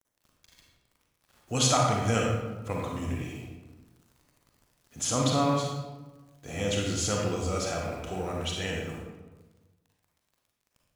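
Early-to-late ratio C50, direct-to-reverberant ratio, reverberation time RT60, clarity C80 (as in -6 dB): 0.0 dB, -1.5 dB, 1.2 s, 3.0 dB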